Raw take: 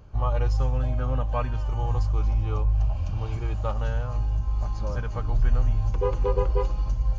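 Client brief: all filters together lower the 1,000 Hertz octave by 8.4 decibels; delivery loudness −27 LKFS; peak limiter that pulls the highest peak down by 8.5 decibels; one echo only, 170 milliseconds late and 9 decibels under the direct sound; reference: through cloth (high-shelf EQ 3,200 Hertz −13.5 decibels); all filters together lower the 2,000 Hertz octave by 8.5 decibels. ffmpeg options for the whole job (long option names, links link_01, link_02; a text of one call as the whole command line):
ffmpeg -i in.wav -af "equalizer=frequency=1000:width_type=o:gain=-8,equalizer=frequency=2000:width_type=o:gain=-4,alimiter=limit=-18.5dB:level=0:latency=1,highshelf=frequency=3200:gain=-13.5,aecho=1:1:170:0.355,volume=1.5dB" out.wav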